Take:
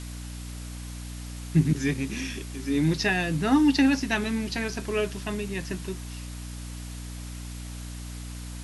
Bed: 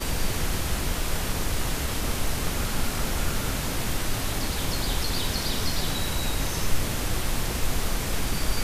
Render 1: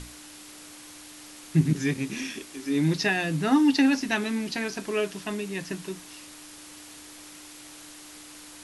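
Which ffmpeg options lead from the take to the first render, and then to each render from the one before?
-af "bandreject=f=60:t=h:w=6,bandreject=f=120:t=h:w=6,bandreject=f=180:t=h:w=6,bandreject=f=240:t=h:w=6"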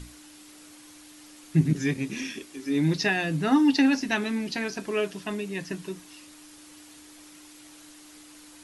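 -af "afftdn=nr=6:nf=-46"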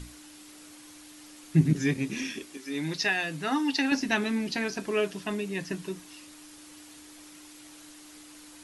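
-filter_complex "[0:a]asettb=1/sr,asplit=3[a][b][c];[a]atrim=end=2.574[d];[b]atrim=start=2.57:end=3.92,asetpts=PTS-STARTPTS,afade=t=in:d=0.004:c=qsin,afade=t=out:st=1.346:d=0.004:c=qsin,lowshelf=f=440:g=-12[e];[c]atrim=start=3.916[f];[d][e]acrossfade=d=0.004:c1=hsin:c2=qsin[g];[g][f]acrossfade=d=0.004:c1=qsin:c2=hsin"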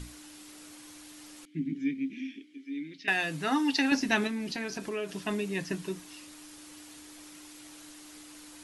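-filter_complex "[0:a]asettb=1/sr,asplit=3[a][b][c];[a]atrim=end=1.454[d];[b]atrim=start=1.45:end=3.08,asetpts=PTS-STARTPTS,afade=t=in:d=0.004:c=qsin,afade=t=out:st=1.626:d=0.004:c=qsin,asplit=3[e][f][g];[e]bandpass=f=270:t=q:w=8,volume=0dB[h];[f]bandpass=f=2.29k:t=q:w=8,volume=-6dB[i];[g]bandpass=f=3.01k:t=q:w=8,volume=-9dB[j];[h][i][j]amix=inputs=3:normalize=0[k];[c]atrim=start=3.076[l];[d][k]acrossfade=d=0.004:c1=hsin:c2=qsin[m];[m][l]acrossfade=d=0.004:c1=qsin:c2=hsin,asettb=1/sr,asplit=3[n][o][p];[n]atrim=end=4.274[q];[o]atrim=start=4.27:end=5.09,asetpts=PTS-STARTPTS,afade=t=in:d=0.004:c=qsin,afade=t=out:st=0.816:d=0.004:c=qsin,acompressor=threshold=-33dB:ratio=2.5:attack=3.2:release=140:knee=1:detection=peak[r];[p]atrim=start=5.086[s];[q][r]acrossfade=d=0.004:c1=hsin:c2=qsin[t];[t][s]acrossfade=d=0.004:c1=qsin:c2=hsin"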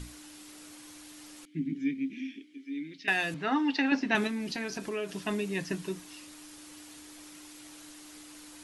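-filter_complex "[0:a]asettb=1/sr,asplit=3[a][b][c];[a]atrim=end=3.344[d];[b]atrim=start=3.34:end=4.15,asetpts=PTS-STARTPTS,afade=t=in:d=0.004:c=qsin,afade=t=out:st=0.806:d=0.004:c=qsin,highpass=170,lowpass=3.1k[e];[c]atrim=start=4.146[f];[d][e]acrossfade=d=0.004:c1=hsin:c2=qsin[g];[g][f]acrossfade=d=0.004:c1=qsin:c2=hsin"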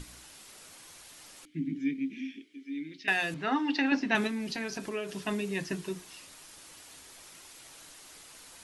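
-af "bandreject=f=60:t=h:w=6,bandreject=f=120:t=h:w=6,bandreject=f=180:t=h:w=6,bandreject=f=240:t=h:w=6,bandreject=f=300:t=h:w=6,bandreject=f=360:t=h:w=6,bandreject=f=420:t=h:w=6"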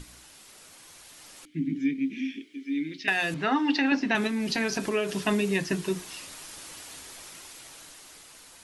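-af "alimiter=limit=-22dB:level=0:latency=1:release=431,dynaudnorm=f=390:g=9:m=8dB"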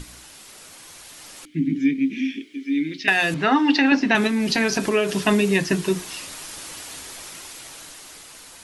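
-af "volume=7dB"

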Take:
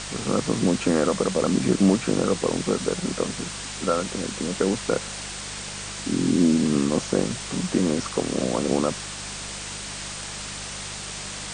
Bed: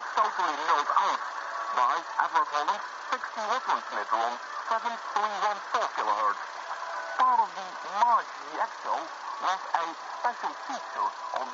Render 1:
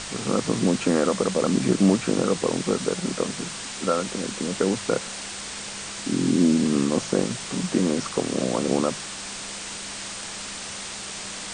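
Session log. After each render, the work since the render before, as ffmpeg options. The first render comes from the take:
-af "bandreject=f=50:t=h:w=4,bandreject=f=100:t=h:w=4,bandreject=f=150:t=h:w=4"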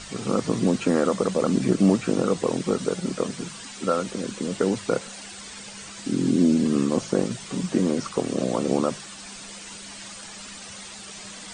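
-af "afftdn=nr=10:nf=-35"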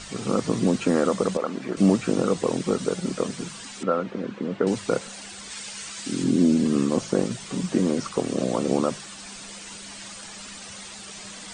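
-filter_complex "[0:a]asettb=1/sr,asplit=3[a][b][c];[a]atrim=end=1.374[d];[b]atrim=start=1.37:end=1.77,asetpts=PTS-STARTPTS,afade=t=in:d=0.004:c=qsin,afade=t=out:st=0.396:d=0.004:c=qsin,bandpass=f=1.2k:t=q:w=0.67[e];[c]atrim=start=1.766[f];[d][e]acrossfade=d=0.004:c1=hsin:c2=qsin[g];[g][f]acrossfade=d=0.004:c1=qsin:c2=hsin,asettb=1/sr,asplit=3[h][i][j];[h]atrim=end=3.834[k];[i]atrim=start=3.83:end=4.67,asetpts=PTS-STARTPTS,afade=t=in:d=0.004:c=qsin,afade=t=out:st=0.836:d=0.004:c=qsin,highpass=110,lowpass=2.1k[l];[j]atrim=start=4.666[m];[k][l]acrossfade=d=0.004:c1=hsin:c2=qsin[n];[n][m]acrossfade=d=0.004:c1=qsin:c2=hsin,asettb=1/sr,asplit=3[o][p][q];[o]atrim=end=5.504[r];[p]atrim=start=5.5:end=6.24,asetpts=PTS-STARTPTS,afade=t=in:d=0.004:c=qsin,afade=t=out:st=0.736:d=0.004:c=qsin,tiltshelf=f=970:g=-4.5[s];[q]atrim=start=6.236[t];[r][s]acrossfade=d=0.004:c1=hsin:c2=qsin[u];[u][t]acrossfade=d=0.004:c1=qsin:c2=hsin"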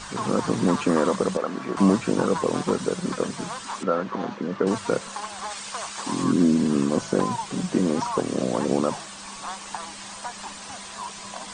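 -filter_complex "[1:a]volume=-7dB[a];[0:a][a]amix=inputs=2:normalize=0"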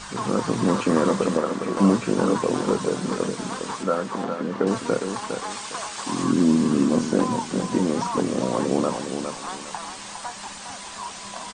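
-filter_complex "[0:a]asplit=2[a][b];[b]adelay=25,volume=-13dB[c];[a][c]amix=inputs=2:normalize=0,aecho=1:1:408|816|1224:0.447|0.125|0.035"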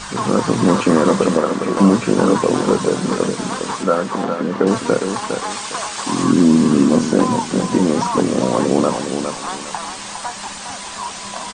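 -af "volume=7dB,alimiter=limit=-2dB:level=0:latency=1"

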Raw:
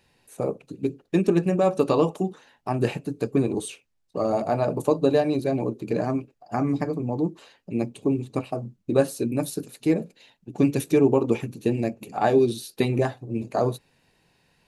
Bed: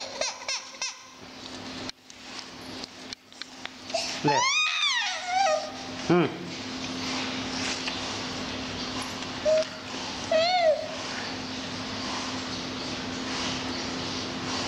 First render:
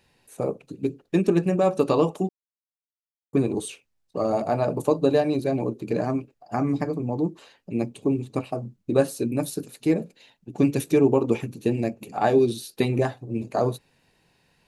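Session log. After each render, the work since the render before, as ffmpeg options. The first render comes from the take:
-filter_complex "[0:a]asplit=3[a][b][c];[a]atrim=end=2.29,asetpts=PTS-STARTPTS,afade=t=out:st=2.286:d=0.004:c=hsin[d];[b]atrim=start=2.29:end=3.33,asetpts=PTS-STARTPTS,volume=0[e];[c]atrim=start=3.33,asetpts=PTS-STARTPTS,afade=t=in:d=0.004:c=hsin[f];[d][e][f]concat=n=3:v=0:a=1"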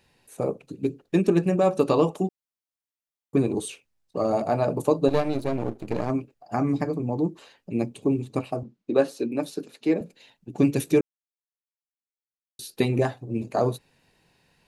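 -filter_complex "[0:a]asettb=1/sr,asplit=3[a][b][c];[a]atrim=end=5.084[d];[b]atrim=start=5.08:end=6.1,asetpts=PTS-STARTPTS,afade=t=in:d=0.004:c=qsin,afade=t=out:st=1.016:d=0.004:c=qsin,aeval=exprs='if(lt(val(0),0),0.251*val(0),val(0))':c=same[e];[c]atrim=start=6.096[f];[d][e]acrossfade=d=0.004:c1=hsin:c2=qsin[g];[g][f]acrossfade=d=0.004:c1=qsin:c2=hsin,asettb=1/sr,asplit=3[h][i][j];[h]atrim=end=8.634[k];[i]atrim=start=8.63:end=10.01,asetpts=PTS-STARTPTS,afade=t=in:d=0.004:c=qsin,afade=t=out:st=1.376:d=0.004:c=qsin,acrossover=split=190 5700:gain=0.0708 1 0.2[l][m][n];[l][m][n]amix=inputs=3:normalize=0[o];[j]atrim=start=10.006[p];[k][o]acrossfade=d=0.004:c1=hsin:c2=qsin[q];[q][p]acrossfade=d=0.004:c1=qsin:c2=hsin,asplit=3[r][s][t];[r]atrim=end=11.01,asetpts=PTS-STARTPTS,afade=t=out:st=11.006:d=0.004:c=hsin[u];[s]atrim=start=11.01:end=12.59,asetpts=PTS-STARTPTS,volume=0[v];[t]atrim=start=12.59,asetpts=PTS-STARTPTS,afade=t=in:d=0.004:c=hsin[w];[u][v][w]concat=n=3:v=0:a=1"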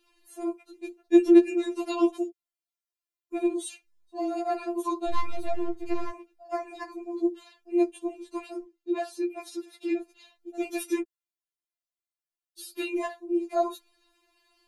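-filter_complex "[0:a]acrossover=split=220|410|1500[a][b][c][d];[a]crystalizer=i=6.5:c=0[e];[e][b][c][d]amix=inputs=4:normalize=0,afftfilt=real='re*4*eq(mod(b,16),0)':imag='im*4*eq(mod(b,16),0)':win_size=2048:overlap=0.75"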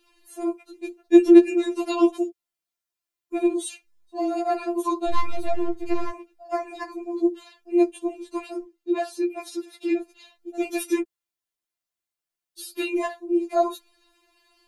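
-af "volume=4.5dB"

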